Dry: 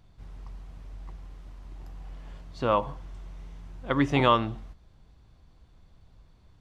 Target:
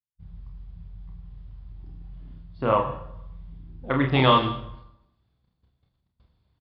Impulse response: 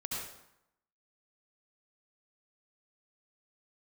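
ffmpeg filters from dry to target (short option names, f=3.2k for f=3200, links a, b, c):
-filter_complex "[0:a]agate=range=-41dB:threshold=-48dB:ratio=16:detection=peak,highpass=65,afwtdn=0.00891,equalizer=f=3.4k:t=o:w=0.21:g=4,areverse,acompressor=mode=upward:threshold=-42dB:ratio=2.5,areverse,aecho=1:1:30|46:0.562|0.422,asplit=2[a][b];[1:a]atrim=start_sample=2205,lowshelf=f=220:g=9.5,highshelf=f=3k:g=11.5[c];[b][c]afir=irnorm=-1:irlink=0,volume=-14.5dB[d];[a][d]amix=inputs=2:normalize=0,aresample=11025,aresample=44100"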